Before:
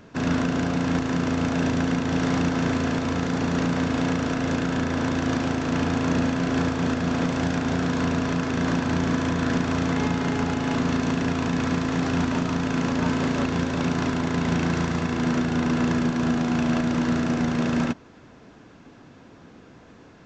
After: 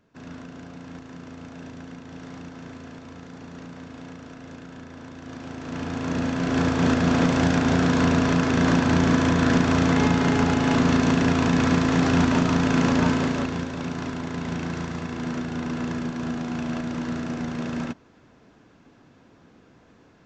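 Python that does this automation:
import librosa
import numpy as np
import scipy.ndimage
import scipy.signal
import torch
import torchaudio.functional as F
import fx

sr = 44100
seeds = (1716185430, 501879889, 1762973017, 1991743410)

y = fx.gain(x, sr, db=fx.line((5.17, -16.5), (5.77, -7.5), (6.87, 4.0), (12.97, 4.0), (13.73, -6.0)))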